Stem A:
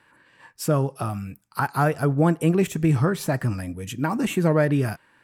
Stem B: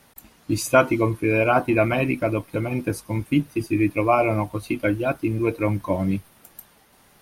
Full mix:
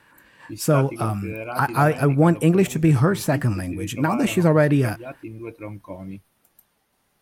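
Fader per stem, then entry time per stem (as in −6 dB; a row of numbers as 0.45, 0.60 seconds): +3.0, −12.5 decibels; 0.00, 0.00 seconds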